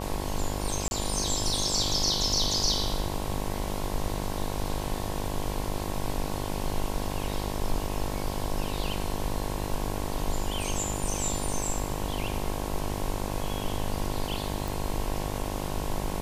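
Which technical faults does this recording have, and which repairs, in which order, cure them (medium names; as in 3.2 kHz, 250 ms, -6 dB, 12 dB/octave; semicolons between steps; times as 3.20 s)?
buzz 50 Hz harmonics 22 -34 dBFS
0.88–0.91 s: dropout 31 ms
14.68 s: pop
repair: de-click; de-hum 50 Hz, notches 22; interpolate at 0.88 s, 31 ms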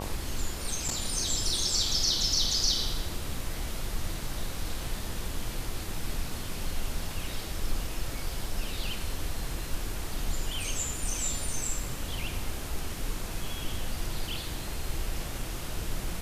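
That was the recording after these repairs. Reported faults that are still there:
nothing left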